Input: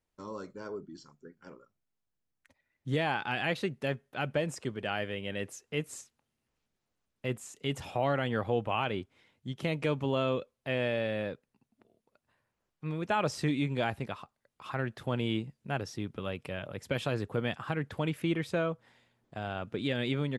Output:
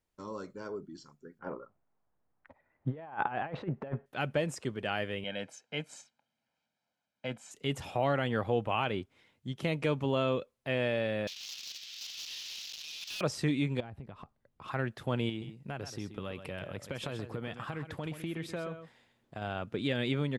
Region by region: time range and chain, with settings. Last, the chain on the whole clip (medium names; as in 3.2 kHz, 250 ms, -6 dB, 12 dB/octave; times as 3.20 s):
1.39–4.06 s: low-pass 1.5 kHz + peaking EQ 810 Hz +8 dB 1.6 oct + compressor with a negative ratio -34 dBFS, ratio -0.5
5.24–7.51 s: band-pass 230–5000 Hz + comb 1.3 ms, depth 76%
11.27–13.21 s: one-bit delta coder 32 kbps, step -37.5 dBFS + steep high-pass 2.8 kHz + waveshaping leveller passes 3
13.80–14.68 s: tilt EQ -3 dB/octave + compression 10:1, threshold -41 dBFS
15.29–19.42 s: compression 4:1, threshold -34 dBFS + delay 129 ms -10 dB
whole clip: none